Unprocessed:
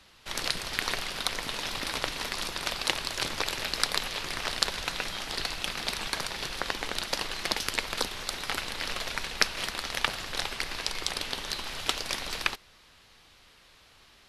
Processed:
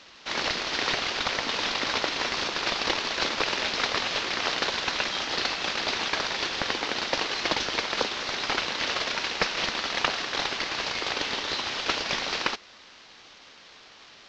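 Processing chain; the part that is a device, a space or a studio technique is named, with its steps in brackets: early wireless headset (high-pass 230 Hz 24 dB/octave; CVSD coder 32 kbps); trim +7 dB

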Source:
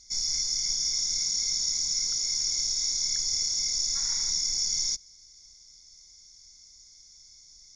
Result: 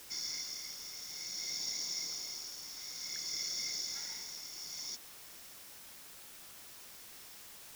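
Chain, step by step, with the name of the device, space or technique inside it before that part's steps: shortwave radio (band-pass 260–2900 Hz; tremolo 0.56 Hz, depth 66%; LFO notch saw up 0.38 Hz 610–2000 Hz; white noise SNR 9 dB); trim +2.5 dB

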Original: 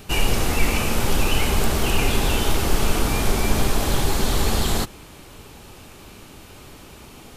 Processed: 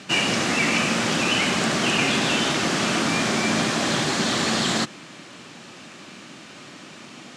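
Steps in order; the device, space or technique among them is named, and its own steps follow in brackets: television speaker (cabinet simulation 160–7500 Hz, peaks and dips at 430 Hz -9 dB, 860 Hz -6 dB, 1.8 kHz +4 dB); trim +4 dB

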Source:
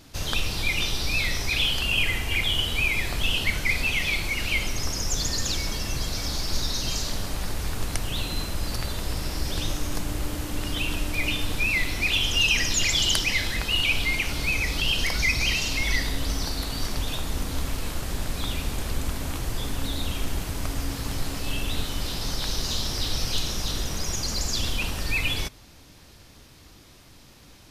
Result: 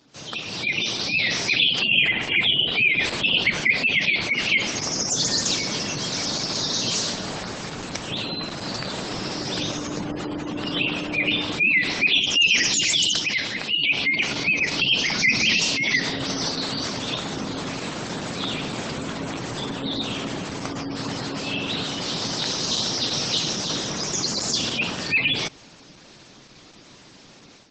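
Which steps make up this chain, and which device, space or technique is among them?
15.05–15.62 s: dynamic bell 220 Hz, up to +7 dB, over -57 dBFS, Q 6.5; noise-suppressed video call (high-pass 140 Hz 24 dB/octave; spectral gate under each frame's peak -20 dB strong; level rider gain up to 11 dB; trim -4 dB; Opus 12 kbps 48 kHz)

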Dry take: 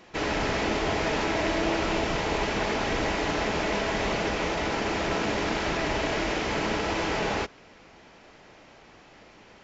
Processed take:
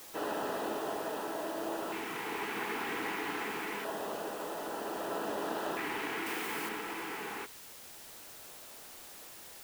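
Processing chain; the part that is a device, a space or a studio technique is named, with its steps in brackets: shortwave radio (band-pass 320–2600 Hz; tremolo 0.34 Hz, depth 39%; LFO notch square 0.26 Hz 600–2200 Hz; white noise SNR 12 dB); 6.26–6.69 s: treble shelf 4.8 kHz +7 dB; trim -4.5 dB

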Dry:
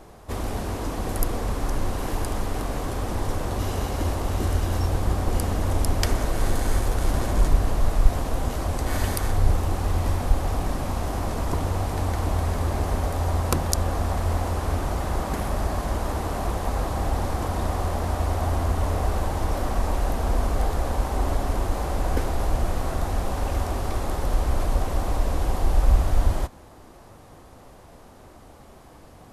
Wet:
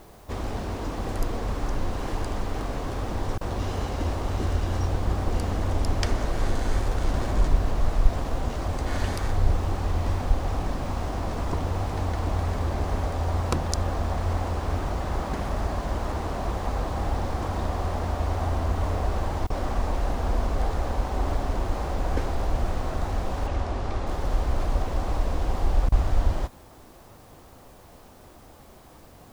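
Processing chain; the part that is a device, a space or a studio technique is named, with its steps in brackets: worn cassette (low-pass 6.3 kHz 12 dB/octave; wow and flutter; level dips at 3.38/19.47/25.89 s, 29 ms -28 dB; white noise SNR 35 dB); 23.47–24.07 s: distance through air 54 m; trim -2 dB

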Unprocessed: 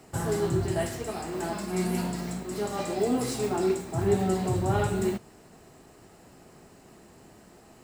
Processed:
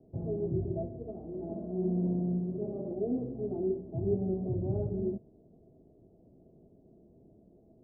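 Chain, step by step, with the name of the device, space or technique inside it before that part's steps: under water (low-pass 460 Hz 24 dB/octave; peaking EQ 650 Hz +10.5 dB 0.24 oct); 1.43–2.94 s: flutter echo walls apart 10.6 m, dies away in 1.3 s; trim -5 dB

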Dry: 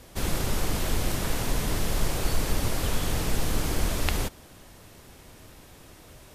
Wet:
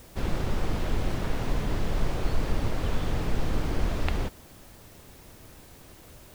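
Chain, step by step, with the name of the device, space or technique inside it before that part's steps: cassette deck with a dirty head (tape spacing loss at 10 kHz 20 dB; wow and flutter; white noise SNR 29 dB)

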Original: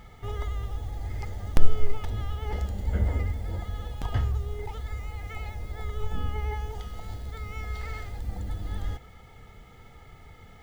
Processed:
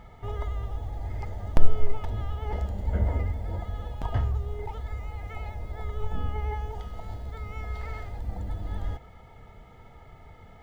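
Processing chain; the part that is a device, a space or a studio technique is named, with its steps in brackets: inside a helmet (treble shelf 3 kHz -9 dB; small resonant body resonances 650/940 Hz, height 7 dB, ringing for 25 ms)

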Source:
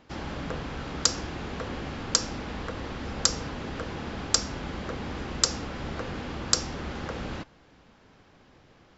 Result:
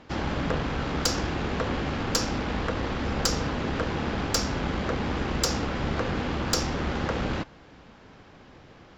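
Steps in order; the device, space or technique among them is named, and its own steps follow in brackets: tube preamp driven hard (valve stage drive 23 dB, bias 0.45; treble shelf 6.7 kHz -7.5 dB); trim +8.5 dB

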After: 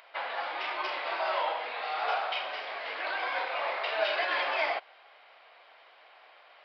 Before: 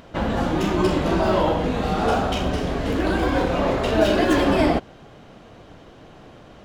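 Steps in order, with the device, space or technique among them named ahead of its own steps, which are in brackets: musical greeting card (resampled via 11.025 kHz; high-pass 690 Hz 24 dB/octave; peaking EQ 2.2 kHz +8 dB 0.47 oct); trim -6 dB

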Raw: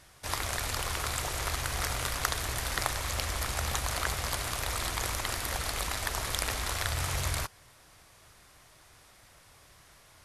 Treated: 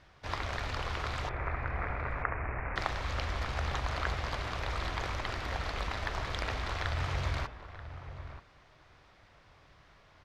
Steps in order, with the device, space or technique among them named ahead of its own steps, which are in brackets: 1.29–2.76 s: steep low-pass 2.5 kHz 96 dB/octave; shout across a valley (distance through air 220 m; echo from a far wall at 160 m, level -11 dB); de-hum 118.4 Hz, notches 30

